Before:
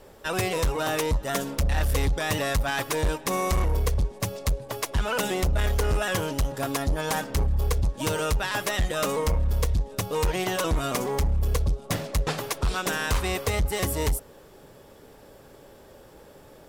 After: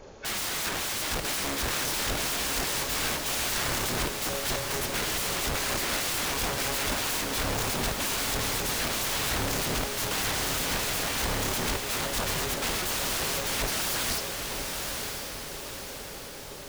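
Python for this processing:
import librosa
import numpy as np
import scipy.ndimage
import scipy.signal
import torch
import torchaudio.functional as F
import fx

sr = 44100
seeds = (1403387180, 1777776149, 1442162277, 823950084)

y = fx.freq_compress(x, sr, knee_hz=1400.0, ratio=1.5)
y = (np.mod(10.0 ** (29.0 / 20.0) * y + 1.0, 2.0) - 1.0) / 10.0 ** (29.0 / 20.0)
y = fx.echo_diffused(y, sr, ms=989, feedback_pct=52, wet_db=-4.0)
y = y * librosa.db_to_amplitude(2.5)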